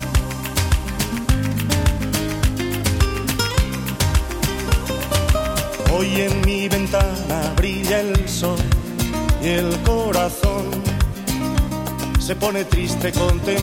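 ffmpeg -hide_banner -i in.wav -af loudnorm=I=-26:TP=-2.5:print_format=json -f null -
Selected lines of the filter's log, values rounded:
"input_i" : "-20.4",
"input_tp" : "-2.4",
"input_lra" : "1.3",
"input_thresh" : "-30.4",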